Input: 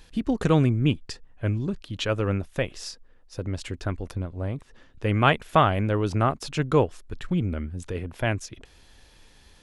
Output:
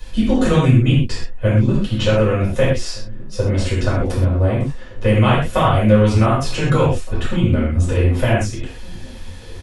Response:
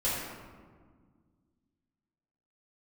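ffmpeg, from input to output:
-filter_complex "[0:a]acrossover=split=110|1500|3800[s0][s1][s2][s3];[s0]acompressor=threshold=0.0112:ratio=4[s4];[s1]acompressor=threshold=0.0355:ratio=4[s5];[s2]acompressor=threshold=0.00708:ratio=4[s6];[s3]acompressor=threshold=0.00631:ratio=4[s7];[s4][s5][s6][s7]amix=inputs=4:normalize=0,asplit=2[s8][s9];[s9]adelay=1516,volume=0.0794,highshelf=f=4000:g=-34.1[s10];[s8][s10]amix=inputs=2:normalize=0[s11];[1:a]atrim=start_sample=2205,atrim=end_sample=6174[s12];[s11][s12]afir=irnorm=-1:irlink=0,volume=2.24"

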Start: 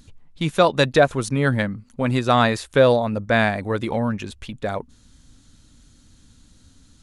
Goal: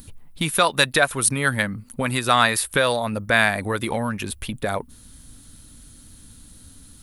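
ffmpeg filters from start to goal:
-filter_complex "[0:a]acrossover=split=980[s0][s1];[s0]acompressor=threshold=0.0398:ratio=6[s2];[s1]aexciter=amount=7.9:drive=4.5:freq=9200[s3];[s2][s3]amix=inputs=2:normalize=0,volume=1.68"

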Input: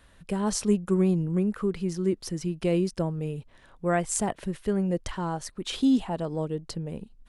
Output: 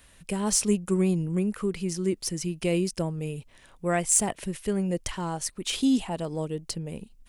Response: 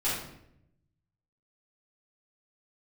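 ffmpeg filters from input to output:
-af "aexciter=amount=1.1:drive=9.2:freq=2100,volume=0.891"

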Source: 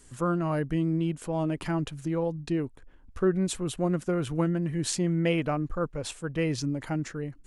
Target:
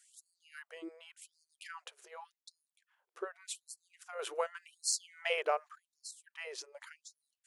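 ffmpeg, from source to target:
-filter_complex "[0:a]asettb=1/sr,asplit=3[s0][s1][s2];[s0]atrim=end=4.194[s3];[s1]atrim=start=4.19:end=5.76,asetpts=PTS-STARTPTS,afade=t=in:d=0.004:c=qsin,afade=t=out:st=1.566:d=0.004:c=qsin,acontrast=77[s4];[s2]atrim=start=5.756[s5];[s3][s4]acrossfade=d=0.004:c1=hsin:c2=qsin[s6];[s6][s5]acrossfade=d=0.004:c1=qsin:c2=hsin,afftfilt=real='re*gte(b*sr/1024,340*pow(4200/340,0.5+0.5*sin(2*PI*0.87*pts/sr)))':imag='im*gte(b*sr/1024,340*pow(4200/340,0.5+0.5*sin(2*PI*0.87*pts/sr)))':win_size=1024:overlap=0.75,volume=0.422"

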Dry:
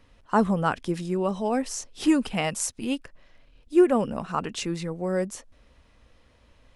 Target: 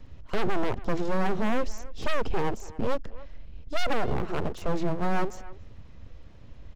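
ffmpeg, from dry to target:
-filter_complex "[0:a]lowshelf=f=86:g=7.5,acrossover=split=280|860[s0][s1][s2];[s2]acompressor=threshold=0.00708:ratio=10[s3];[s0][s1][s3]amix=inputs=3:normalize=0,lowshelf=f=420:g=9.5,volume=7.5,asoftclip=hard,volume=0.133,aresample=16000,aresample=44100,aeval=exprs='abs(val(0))':c=same,asplit=2[s4][s5];[s5]adelay=280,highpass=300,lowpass=3400,asoftclip=type=hard:threshold=0.0841,volume=0.126[s6];[s4][s6]amix=inputs=2:normalize=0"

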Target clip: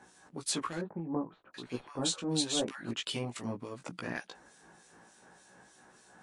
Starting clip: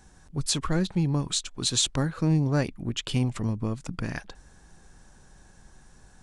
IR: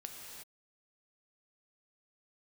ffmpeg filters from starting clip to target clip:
-filter_complex "[0:a]highpass=290,equalizer=f=5900:w=0.88:g=-4.5,acompressor=threshold=0.01:ratio=1.5,flanger=delay=16:depth=2.2:speed=0.52,aeval=exprs='clip(val(0),-1,0.0316)':c=same,acrossover=split=2400[s0][s1];[s0]aeval=exprs='val(0)*(1-0.7/2+0.7/2*cos(2*PI*3.4*n/s))':c=same[s2];[s1]aeval=exprs='val(0)*(1-0.7/2-0.7/2*cos(2*PI*3.4*n/s))':c=same[s3];[s2][s3]amix=inputs=2:normalize=0,asettb=1/sr,asplit=3[s4][s5][s6];[s4]atrim=end=0.814[s7];[s5]atrim=start=0.81:end=2.91,asetpts=PTS-STARTPTS,afade=t=in:d=0.004:c=qsin,afade=t=out:st=2.096:d=0.004:c=qsin,acrossover=split=1300[s8][s9];[s9]adelay=730[s10];[s8][s10]amix=inputs=2:normalize=0,atrim=end_sample=92610[s11];[s6]atrim=start=2.906[s12];[s7][s11]acrossfade=d=0.004:c1=hsin:c2=qsin[s13];[s13][s12]acrossfade=d=0.004:c1=qsin:c2=hsin,volume=2.66" -ar 24000 -c:a libmp3lame -b:a 56k

